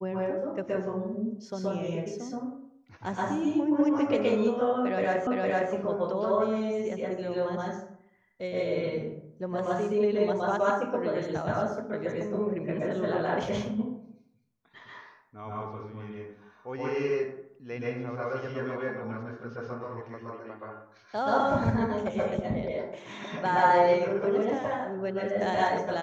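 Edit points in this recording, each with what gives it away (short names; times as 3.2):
5.27 repeat of the last 0.46 s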